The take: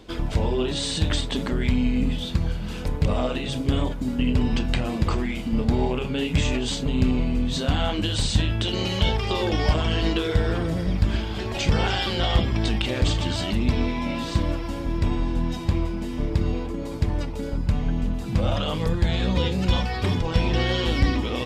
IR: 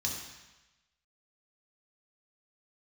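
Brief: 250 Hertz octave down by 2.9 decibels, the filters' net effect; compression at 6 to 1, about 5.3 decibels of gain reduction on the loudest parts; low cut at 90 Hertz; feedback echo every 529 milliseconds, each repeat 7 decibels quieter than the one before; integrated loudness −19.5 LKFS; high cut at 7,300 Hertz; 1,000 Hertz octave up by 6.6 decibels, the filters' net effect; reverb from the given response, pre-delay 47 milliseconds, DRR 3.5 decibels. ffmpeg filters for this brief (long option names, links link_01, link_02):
-filter_complex "[0:a]highpass=90,lowpass=7300,equalizer=frequency=250:width_type=o:gain=-4,equalizer=frequency=1000:width_type=o:gain=8.5,acompressor=threshold=-25dB:ratio=6,aecho=1:1:529|1058|1587|2116|2645:0.447|0.201|0.0905|0.0407|0.0183,asplit=2[link_01][link_02];[1:a]atrim=start_sample=2205,adelay=47[link_03];[link_02][link_03]afir=irnorm=-1:irlink=0,volume=-7dB[link_04];[link_01][link_04]amix=inputs=2:normalize=0,volume=6.5dB"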